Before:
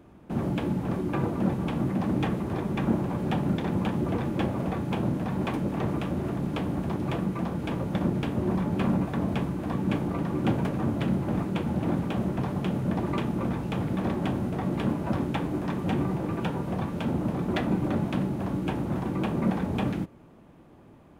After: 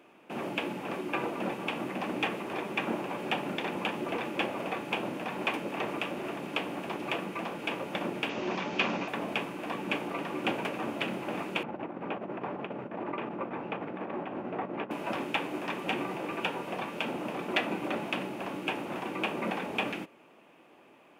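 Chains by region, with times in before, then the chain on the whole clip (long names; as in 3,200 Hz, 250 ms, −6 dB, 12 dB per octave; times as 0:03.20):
0:08.29–0:09.08: Butterworth low-pass 6,400 Hz 48 dB per octave + high-shelf EQ 3,400 Hz +12 dB
0:11.63–0:14.91: low-pass filter 1,500 Hz + compressor whose output falls as the input rises −29 dBFS, ratio −0.5
whole clip: high-pass filter 410 Hz 12 dB per octave; parametric band 2,600 Hz +11 dB 0.6 octaves; notch filter 4,000 Hz, Q 27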